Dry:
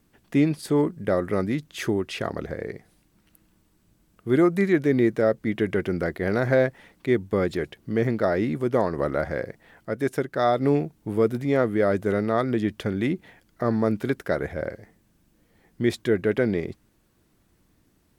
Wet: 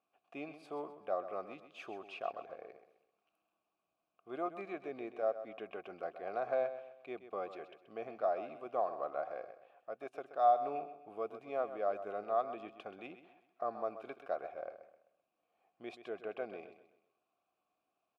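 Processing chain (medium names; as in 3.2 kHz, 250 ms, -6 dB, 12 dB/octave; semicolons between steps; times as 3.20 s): vowel filter a; bass shelf 310 Hz -8 dB; feedback delay 129 ms, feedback 38%, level -12 dB; trim -1 dB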